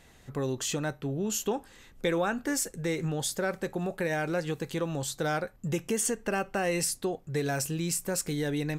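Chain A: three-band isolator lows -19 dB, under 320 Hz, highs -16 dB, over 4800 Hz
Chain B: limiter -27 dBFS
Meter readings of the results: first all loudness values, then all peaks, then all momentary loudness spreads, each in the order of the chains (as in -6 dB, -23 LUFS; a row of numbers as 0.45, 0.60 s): -34.5, -36.0 LUFS; -16.5, -27.0 dBFS; 7, 3 LU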